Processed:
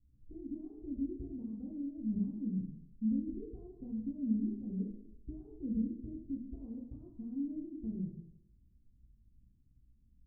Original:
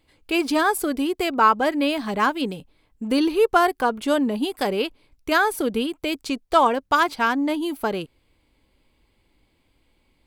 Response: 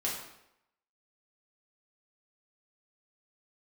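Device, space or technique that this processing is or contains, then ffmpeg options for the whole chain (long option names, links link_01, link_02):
club heard from the street: -filter_complex "[0:a]alimiter=limit=-15.5dB:level=0:latency=1:release=240,lowpass=frequency=180:width=0.5412,lowpass=frequency=180:width=1.3066[link_01];[1:a]atrim=start_sample=2205[link_02];[link_01][link_02]afir=irnorm=-1:irlink=0,volume=-2dB"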